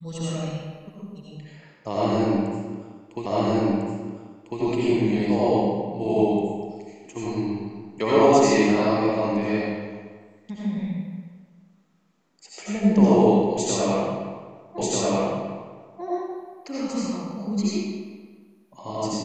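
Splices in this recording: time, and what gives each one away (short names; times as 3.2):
3.26 repeat of the last 1.35 s
14.78 repeat of the last 1.24 s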